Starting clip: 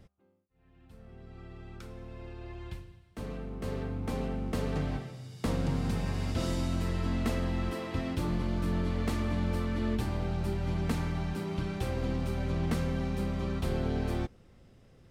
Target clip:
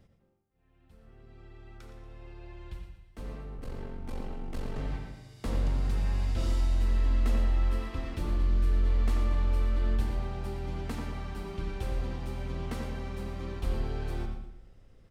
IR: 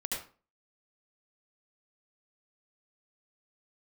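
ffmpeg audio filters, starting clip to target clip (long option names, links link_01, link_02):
-filter_complex "[0:a]asettb=1/sr,asplit=3[link_01][link_02][link_03];[link_01]atrim=end=3.564[link_04];[link_02]atrim=start=3.56:end=4.78,asetpts=PTS-STARTPTS,afade=type=in:duration=0.004:curve=qsin,afade=type=out:start_time=1.216:duration=0.004:curve=qsin,aeval=exprs='val(0)*sin(2*PI*23*n/s)':channel_layout=same[link_05];[link_03]atrim=start=4.776[link_06];[link_04][link_05]acrossfade=duration=0.004:curve1=hsin:curve2=qsin[link_07];[link_07][link_06]acrossfade=duration=0.004:curve1=qsin:curve2=hsin,asettb=1/sr,asplit=3[link_08][link_09][link_10];[link_08]atrim=end=8.374[link_11];[link_09]atrim=start=8.37:end=8.83,asetpts=PTS-STARTPTS,afade=type=in:duration=0.004:curve=qsin,afade=type=out:start_time=0.456:duration=0.004:curve=qsin,equalizer=frequency=850:width_type=o:width=0.77:gain=-6.5[link_12];[link_10]atrim=start=8.826[link_13];[link_11][link_12]acrossfade=duration=0.004:curve1=hsin:curve2=qsin[link_14];[link_14][link_13]acrossfade=duration=0.004:curve1=qsin:curve2=hsin,aecho=1:1:117|234|351|468:0.266|0.0958|0.0345|0.0124,asubboost=boost=5.5:cutoff=51,asplit=2[link_15][link_16];[link_16]adelay=89,lowpass=frequency=1700:poles=1,volume=-5dB,asplit=2[link_17][link_18];[link_18]adelay=89,lowpass=frequency=1700:poles=1,volume=0.41,asplit=2[link_19][link_20];[link_20]adelay=89,lowpass=frequency=1700:poles=1,volume=0.41,asplit=2[link_21][link_22];[link_22]adelay=89,lowpass=frequency=1700:poles=1,volume=0.41,asplit=2[link_23][link_24];[link_24]adelay=89,lowpass=frequency=1700:poles=1,volume=0.41[link_25];[link_15][link_17][link_19][link_21][link_23][link_25]amix=inputs=6:normalize=0,asplit=2[link_26][link_27];[1:a]atrim=start_sample=2205[link_28];[link_27][link_28]afir=irnorm=-1:irlink=0,volume=-9.5dB[link_29];[link_26][link_29]amix=inputs=2:normalize=0,volume=-6.5dB"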